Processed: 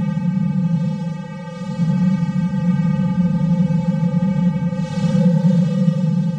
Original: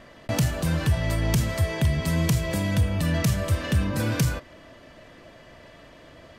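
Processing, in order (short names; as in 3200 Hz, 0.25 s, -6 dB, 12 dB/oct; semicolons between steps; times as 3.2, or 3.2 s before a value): vocoder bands 4, square 173 Hz; hard clip -21 dBFS, distortion -13 dB; Paulstretch 14×, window 0.05 s, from 1.94; gain +7.5 dB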